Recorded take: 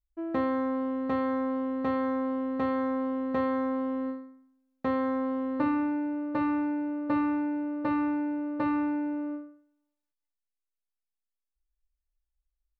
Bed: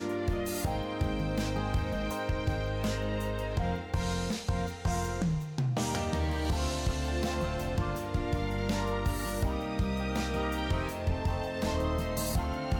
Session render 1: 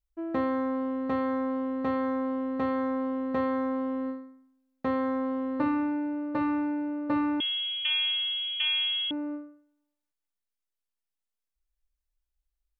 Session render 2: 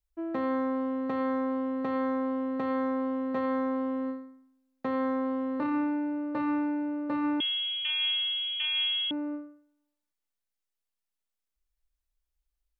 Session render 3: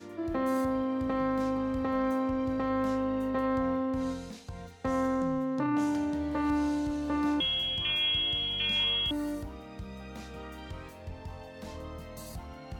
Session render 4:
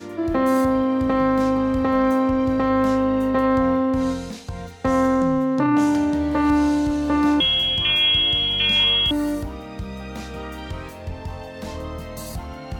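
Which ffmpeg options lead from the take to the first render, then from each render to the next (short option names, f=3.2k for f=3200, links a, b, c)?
-filter_complex "[0:a]asettb=1/sr,asplit=3[a][b][c];[a]atrim=end=7.404[d];[b]atrim=start=7.4:end=9.11,asetpts=PTS-STARTPTS,afade=t=in:d=0.004:c=qsin,afade=t=out:st=1.706:d=0.004:c=qsin,lowpass=f=3.1k:t=q:w=0.5098,lowpass=f=3.1k:t=q:w=0.6013,lowpass=f=3.1k:t=q:w=0.9,lowpass=f=3.1k:t=q:w=2.563,afreqshift=-3600[e];[c]atrim=start=9.106[f];[d][e]acrossfade=d=0.004:c1=hsin:c2=qsin[g];[g][f]acrossfade=d=0.004:c1=qsin:c2=hsin"
-filter_complex "[0:a]acrossover=split=130[a][b];[a]acompressor=threshold=-60dB:ratio=6[c];[c][b]amix=inputs=2:normalize=0,alimiter=limit=-22.5dB:level=0:latency=1:release=10"
-filter_complex "[1:a]volume=-11.5dB[a];[0:a][a]amix=inputs=2:normalize=0"
-af "volume=10.5dB"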